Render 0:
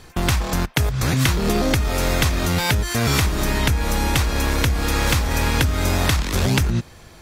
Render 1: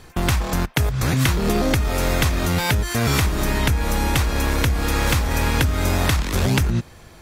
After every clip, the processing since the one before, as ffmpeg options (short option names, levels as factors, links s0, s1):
-af "equalizer=f=4900:t=o:w=1.6:g=-2.5"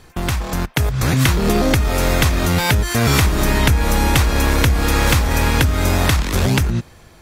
-af "dynaudnorm=f=170:g=9:m=3.76,volume=0.891"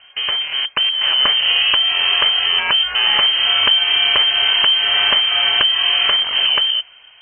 -af "lowpass=f=2700:t=q:w=0.5098,lowpass=f=2700:t=q:w=0.6013,lowpass=f=2700:t=q:w=0.9,lowpass=f=2700:t=q:w=2.563,afreqshift=-3200"